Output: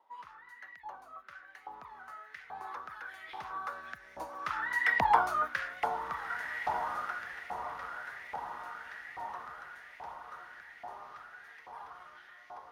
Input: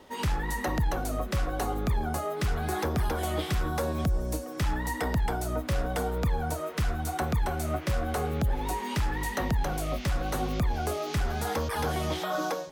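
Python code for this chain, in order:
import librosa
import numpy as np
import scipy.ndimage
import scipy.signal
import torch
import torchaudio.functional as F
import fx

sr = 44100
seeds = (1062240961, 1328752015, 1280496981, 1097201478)

y = fx.doppler_pass(x, sr, speed_mps=10, closest_m=3.0, pass_at_s=5.11)
y = fx.riaa(y, sr, side='playback')
y = fx.echo_diffused(y, sr, ms=1629, feedback_pct=51, wet_db=-7.5)
y = fx.filter_lfo_highpass(y, sr, shape='saw_up', hz=1.2, low_hz=850.0, high_hz=2100.0, q=5.2)
y = fx.low_shelf(y, sr, hz=170.0, db=7.5)
y = fx.notch(y, sr, hz=7800.0, q=5.3)
y = y * librosa.db_to_amplitude(3.5)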